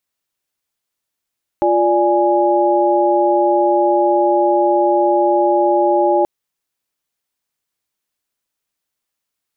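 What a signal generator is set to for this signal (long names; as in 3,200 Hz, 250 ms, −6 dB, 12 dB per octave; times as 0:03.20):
held notes F4/D5/G#5 sine, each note −15.5 dBFS 4.63 s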